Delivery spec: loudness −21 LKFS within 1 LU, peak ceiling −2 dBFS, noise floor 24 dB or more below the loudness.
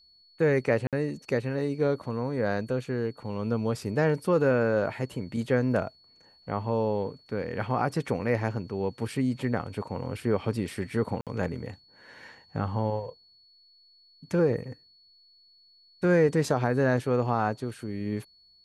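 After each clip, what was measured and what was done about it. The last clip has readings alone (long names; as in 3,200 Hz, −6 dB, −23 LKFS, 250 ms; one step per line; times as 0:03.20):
number of dropouts 2; longest dropout 57 ms; interfering tone 4,400 Hz; level of the tone −57 dBFS; integrated loudness −28.5 LKFS; sample peak −11.5 dBFS; target loudness −21.0 LKFS
→ repair the gap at 0:00.87/0:11.21, 57 ms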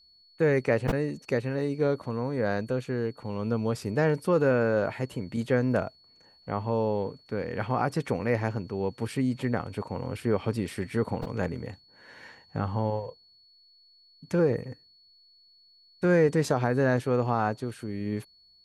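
number of dropouts 0; interfering tone 4,400 Hz; level of the tone −57 dBFS
→ notch filter 4,400 Hz, Q 30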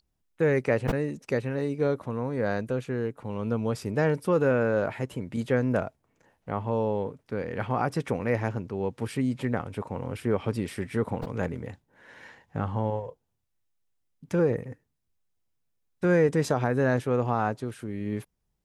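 interfering tone none found; integrated loudness −28.5 LKFS; sample peak −11.5 dBFS; target loudness −21.0 LKFS
→ level +7.5 dB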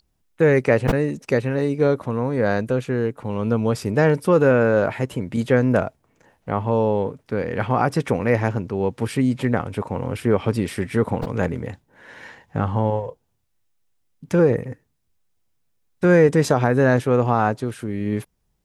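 integrated loudness −21.0 LKFS; sample peak −4.0 dBFS; background noise floor −69 dBFS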